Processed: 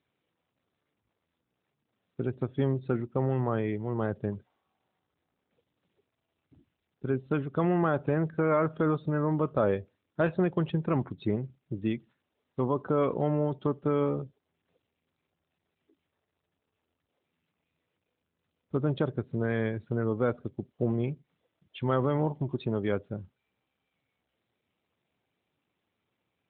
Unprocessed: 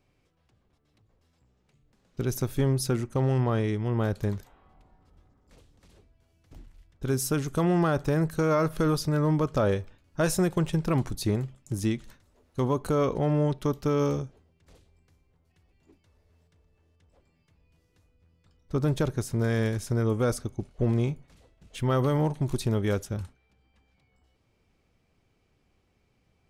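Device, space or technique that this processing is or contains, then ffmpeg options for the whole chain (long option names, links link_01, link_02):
mobile call with aggressive noise cancelling: -filter_complex "[0:a]asplit=3[link_01][link_02][link_03];[link_01]afade=type=out:start_time=22.49:duration=0.02[link_04];[link_02]highpass=frequency=76:poles=1,afade=type=in:start_time=22.49:duration=0.02,afade=type=out:start_time=22.9:duration=0.02[link_05];[link_03]afade=type=in:start_time=22.9:duration=0.02[link_06];[link_04][link_05][link_06]amix=inputs=3:normalize=0,highpass=frequency=160:poles=1,afftdn=noise_reduction=15:noise_floor=-43" -ar 8000 -c:a libopencore_amrnb -b:a 12200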